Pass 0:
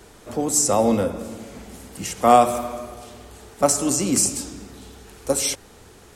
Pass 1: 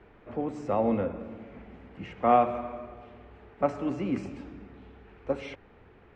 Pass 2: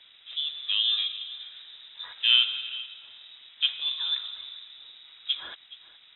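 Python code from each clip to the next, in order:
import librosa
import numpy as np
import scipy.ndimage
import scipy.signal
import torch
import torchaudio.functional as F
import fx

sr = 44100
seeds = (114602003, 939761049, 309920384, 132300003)

y1 = scipy.signal.sosfilt(scipy.signal.cheby1(3, 1.0, 2400.0, 'lowpass', fs=sr, output='sos'), x)
y1 = F.gain(torch.from_numpy(y1), -7.0).numpy()
y2 = fx.dmg_crackle(y1, sr, seeds[0], per_s=120.0, level_db=-50.0)
y2 = y2 + 10.0 ** (-18.5 / 20.0) * np.pad(y2, (int(421 * sr / 1000.0), 0))[:len(y2)]
y2 = fx.freq_invert(y2, sr, carrier_hz=3800)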